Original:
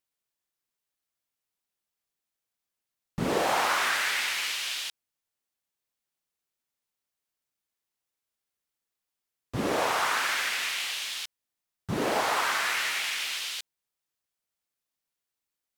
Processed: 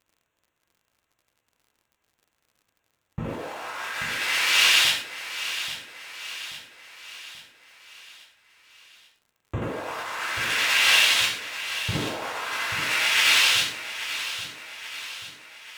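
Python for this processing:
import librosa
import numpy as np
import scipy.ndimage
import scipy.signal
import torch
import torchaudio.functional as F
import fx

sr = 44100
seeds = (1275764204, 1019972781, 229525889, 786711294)

p1 = fx.wiener(x, sr, points=9)
p2 = fx.over_compress(p1, sr, threshold_db=-35.0, ratio=-0.5)
p3 = fx.rev_gated(p2, sr, seeds[0], gate_ms=170, shape='falling', drr_db=-5.0)
p4 = fx.dmg_crackle(p3, sr, seeds[1], per_s=55.0, level_db=-56.0)
p5 = p4 + fx.echo_feedback(p4, sr, ms=833, feedback_pct=52, wet_db=-12, dry=0)
y = p5 * librosa.db_to_amplitude(6.0)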